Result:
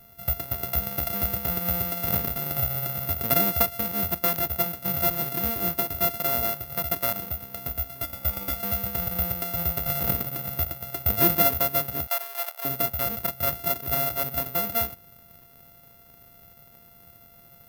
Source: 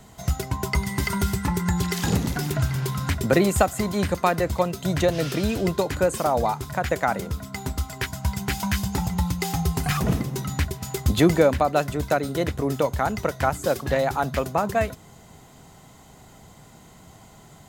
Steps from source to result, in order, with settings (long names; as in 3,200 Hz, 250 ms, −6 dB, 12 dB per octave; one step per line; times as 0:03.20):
samples sorted by size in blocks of 64 samples
0:08.03–0:08.56: comb filter 3.5 ms
0:12.07–0:12.65: high-pass filter 660 Hz 24 dB per octave
bad sample-rate conversion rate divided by 3×, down filtered, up zero stuff
digital clicks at 0:04.36, −3 dBFS
level −8 dB